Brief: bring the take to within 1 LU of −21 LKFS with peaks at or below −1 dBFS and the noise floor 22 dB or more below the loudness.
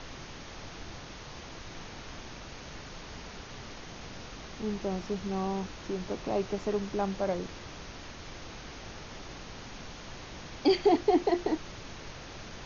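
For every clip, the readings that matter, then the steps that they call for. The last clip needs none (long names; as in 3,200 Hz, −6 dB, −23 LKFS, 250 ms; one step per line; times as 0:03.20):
background noise floor −45 dBFS; target noise floor −57 dBFS; integrated loudness −35.0 LKFS; sample peak −13.5 dBFS; target loudness −21.0 LKFS
→ noise reduction from a noise print 12 dB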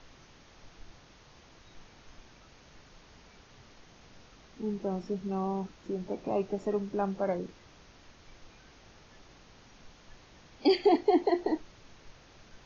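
background noise floor −57 dBFS; integrated loudness −31.0 LKFS; sample peak −13.5 dBFS; target loudness −21.0 LKFS
→ level +10 dB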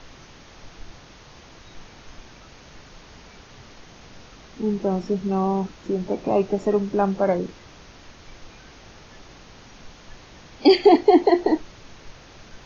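integrated loudness −21.0 LKFS; sample peak −3.5 dBFS; background noise floor −47 dBFS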